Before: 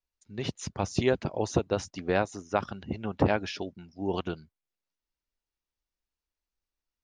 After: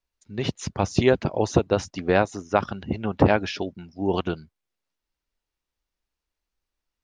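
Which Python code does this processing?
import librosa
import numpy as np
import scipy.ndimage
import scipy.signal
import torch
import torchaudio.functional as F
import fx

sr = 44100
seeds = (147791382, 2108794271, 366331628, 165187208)

y = fx.high_shelf(x, sr, hz=8300.0, db=-9.0)
y = y * 10.0 ** (6.5 / 20.0)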